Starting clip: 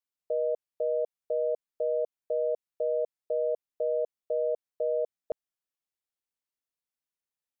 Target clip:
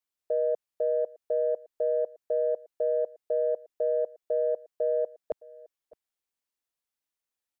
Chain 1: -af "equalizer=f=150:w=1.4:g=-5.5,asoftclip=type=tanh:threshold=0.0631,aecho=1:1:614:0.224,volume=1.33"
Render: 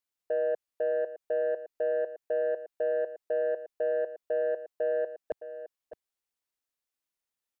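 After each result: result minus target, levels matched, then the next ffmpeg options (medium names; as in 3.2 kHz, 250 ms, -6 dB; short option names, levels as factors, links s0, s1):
saturation: distortion +18 dB; echo-to-direct +9.5 dB
-af "equalizer=f=150:w=1.4:g=-5.5,asoftclip=type=tanh:threshold=0.2,aecho=1:1:614:0.224,volume=1.33"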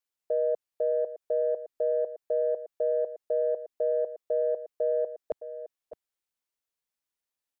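echo-to-direct +9.5 dB
-af "equalizer=f=150:w=1.4:g=-5.5,asoftclip=type=tanh:threshold=0.2,aecho=1:1:614:0.075,volume=1.33"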